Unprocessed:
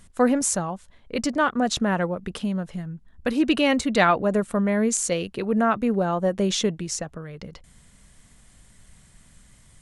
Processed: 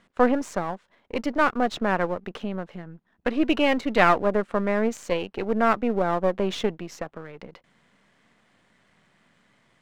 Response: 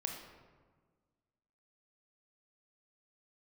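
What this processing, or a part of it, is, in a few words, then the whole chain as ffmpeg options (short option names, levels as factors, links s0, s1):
crystal radio: -af "highpass=270,lowpass=2600,aeval=exprs='if(lt(val(0),0),0.447*val(0),val(0))':c=same,volume=1.41"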